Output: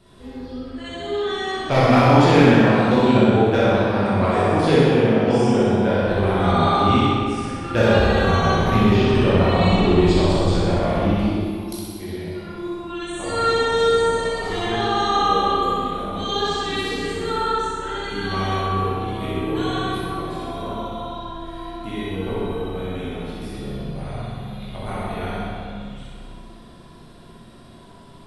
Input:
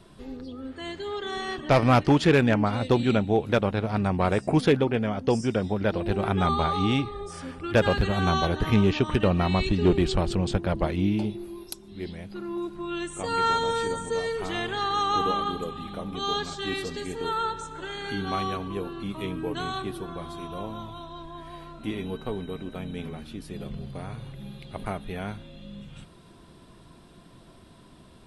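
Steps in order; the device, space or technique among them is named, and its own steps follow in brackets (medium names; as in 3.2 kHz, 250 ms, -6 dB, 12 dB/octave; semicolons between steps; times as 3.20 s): tunnel (flutter echo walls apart 10.8 m, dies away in 0.95 s; reverberation RT60 2.1 s, pre-delay 13 ms, DRR -8 dB); trim -3.5 dB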